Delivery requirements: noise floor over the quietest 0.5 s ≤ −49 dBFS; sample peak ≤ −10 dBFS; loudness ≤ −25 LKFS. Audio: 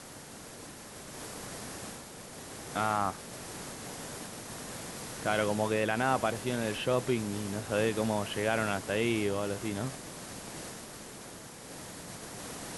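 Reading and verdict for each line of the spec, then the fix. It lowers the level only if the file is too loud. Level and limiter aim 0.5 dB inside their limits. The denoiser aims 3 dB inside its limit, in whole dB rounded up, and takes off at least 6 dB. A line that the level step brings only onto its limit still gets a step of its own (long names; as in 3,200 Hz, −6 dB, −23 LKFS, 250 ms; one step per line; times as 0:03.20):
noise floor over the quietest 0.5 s −47 dBFS: out of spec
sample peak −14.0 dBFS: in spec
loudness −33.5 LKFS: in spec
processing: broadband denoise 6 dB, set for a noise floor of −47 dBFS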